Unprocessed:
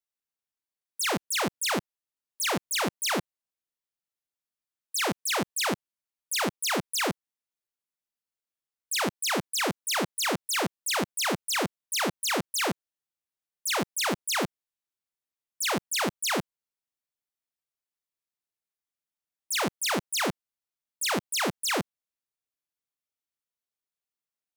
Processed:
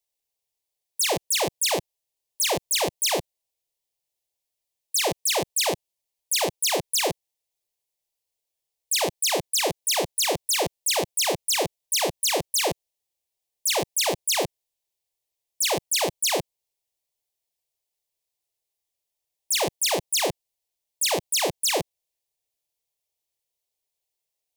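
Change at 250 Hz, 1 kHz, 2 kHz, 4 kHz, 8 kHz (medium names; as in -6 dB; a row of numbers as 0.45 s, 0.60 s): -3.0 dB, +2.0 dB, -0.5 dB, +5.0 dB, +6.5 dB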